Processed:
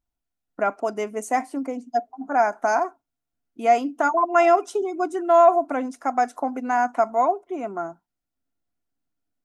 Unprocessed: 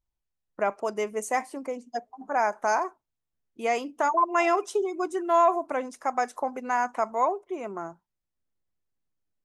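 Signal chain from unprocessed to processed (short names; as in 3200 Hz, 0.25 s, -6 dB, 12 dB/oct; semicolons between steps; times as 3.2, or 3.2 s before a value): small resonant body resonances 270/700/1400 Hz, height 11 dB, ringing for 45 ms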